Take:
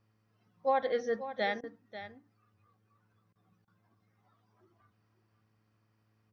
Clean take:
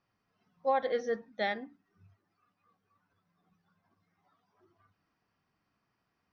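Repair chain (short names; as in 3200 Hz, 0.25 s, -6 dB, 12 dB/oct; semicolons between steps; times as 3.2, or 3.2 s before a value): de-hum 108.6 Hz, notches 5; interpolate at 1.61/3.33/3.65, 24 ms; inverse comb 0.539 s -12.5 dB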